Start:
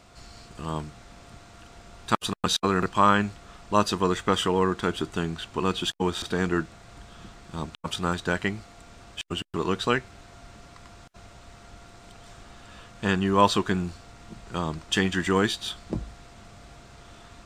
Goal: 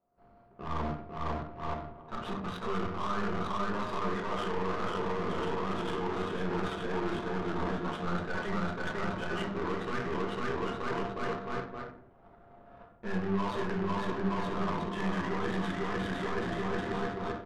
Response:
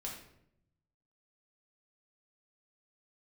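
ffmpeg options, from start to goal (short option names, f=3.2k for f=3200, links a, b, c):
-filter_complex "[0:a]aecho=1:1:500|925|1286|1593|1854:0.631|0.398|0.251|0.158|0.1,agate=range=-33dB:threshold=-32dB:ratio=3:detection=peak,areverse,acompressor=threshold=-35dB:ratio=8,areverse,asplit=2[a][b];[b]highpass=f=720:p=1,volume=21dB,asoftclip=type=tanh:threshold=-18.5dB[c];[a][c]amix=inputs=2:normalize=0,lowpass=f=1.3k:p=1,volume=-6dB,aresample=16000,volume=34.5dB,asoftclip=hard,volume=-34.5dB,aresample=44100[d];[1:a]atrim=start_sample=2205,afade=t=out:st=0.33:d=0.01,atrim=end_sample=14994,asetrate=41013,aresample=44100[e];[d][e]afir=irnorm=-1:irlink=0,adynamicsmooth=sensitivity=6:basefreq=830,volume=4.5dB"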